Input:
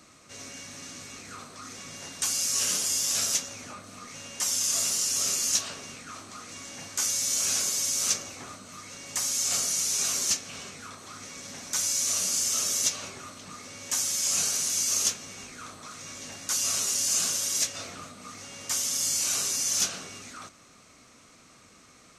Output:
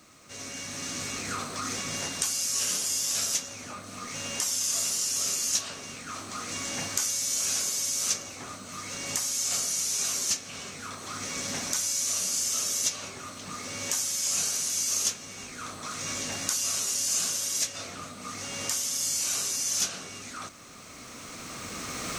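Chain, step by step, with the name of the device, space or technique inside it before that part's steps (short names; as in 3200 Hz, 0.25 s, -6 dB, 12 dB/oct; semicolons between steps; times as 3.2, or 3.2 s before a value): cheap recorder with automatic gain (white noise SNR 40 dB; recorder AGC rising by 10 dB/s); gain -1.5 dB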